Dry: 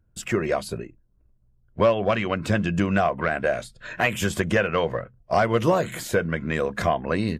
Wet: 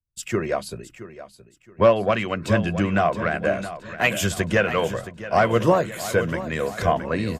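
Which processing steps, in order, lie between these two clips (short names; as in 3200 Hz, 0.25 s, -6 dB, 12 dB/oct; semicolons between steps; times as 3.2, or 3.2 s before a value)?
feedback echo 0.671 s, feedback 47%, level -9 dB; three-band expander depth 70%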